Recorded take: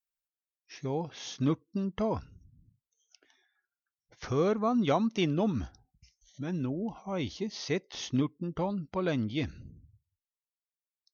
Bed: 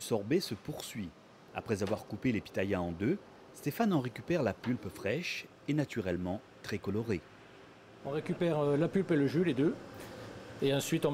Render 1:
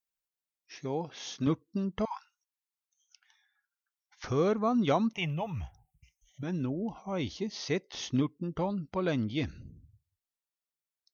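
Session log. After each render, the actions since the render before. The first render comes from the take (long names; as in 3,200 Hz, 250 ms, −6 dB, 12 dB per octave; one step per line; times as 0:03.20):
0:00.79–0:01.47: Bessel high-pass filter 160 Hz
0:02.05–0:04.24: linear-phase brick-wall high-pass 760 Hz
0:05.13–0:06.43: drawn EQ curve 160 Hz 0 dB, 240 Hz −22 dB, 870 Hz +3 dB, 1,500 Hz −13 dB, 2,100 Hz +3 dB, 3,000 Hz +2 dB, 4,300 Hz −21 dB, 8,500 Hz +7 dB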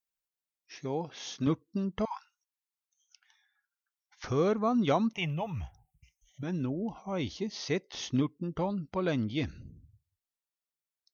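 no processing that can be heard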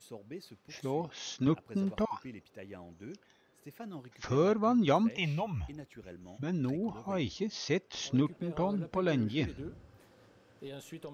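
mix in bed −14.5 dB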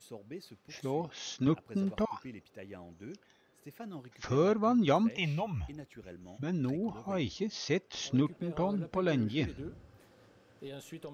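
notch filter 970 Hz, Q 25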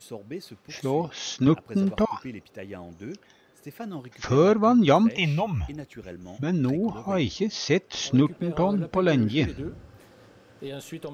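level +8.5 dB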